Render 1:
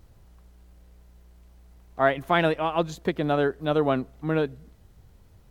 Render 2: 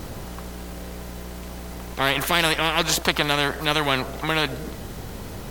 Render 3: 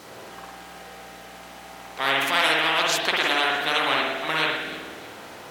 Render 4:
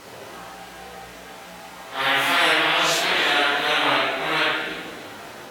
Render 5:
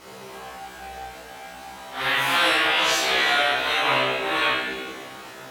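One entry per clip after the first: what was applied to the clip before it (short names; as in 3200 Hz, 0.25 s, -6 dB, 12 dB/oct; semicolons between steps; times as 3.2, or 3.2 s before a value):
spectral compressor 4:1; gain +3 dB
weighting filter A; echo with dull and thin repeats by turns 0.156 s, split 1600 Hz, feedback 59%, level -10.5 dB; spring tank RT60 1 s, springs 51 ms, chirp 70 ms, DRR -2.5 dB; gain -4 dB
phase scrambler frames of 0.2 s; gain +2.5 dB
resonator 65 Hz, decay 0.45 s, harmonics all, mix 100%; gain +8.5 dB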